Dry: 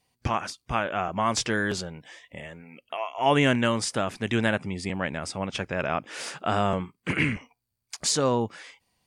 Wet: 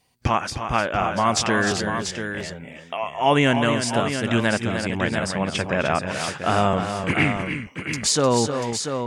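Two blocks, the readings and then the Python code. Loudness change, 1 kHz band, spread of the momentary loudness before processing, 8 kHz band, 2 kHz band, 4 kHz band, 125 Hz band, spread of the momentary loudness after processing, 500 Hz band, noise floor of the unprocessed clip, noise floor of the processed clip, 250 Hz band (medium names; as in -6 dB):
+4.5 dB, +5.5 dB, 16 LU, +5.5 dB, +5.0 dB, +5.0 dB, +5.5 dB, 10 LU, +5.0 dB, -81 dBFS, -41 dBFS, +5.0 dB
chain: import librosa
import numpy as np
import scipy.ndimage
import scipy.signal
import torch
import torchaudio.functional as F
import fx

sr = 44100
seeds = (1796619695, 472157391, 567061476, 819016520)

y = fx.echo_multitap(x, sr, ms=(262, 305, 689), db=(-16.5, -8.0, -8.0))
y = fx.rider(y, sr, range_db=3, speed_s=2.0)
y = y * librosa.db_to_amplitude(3.5)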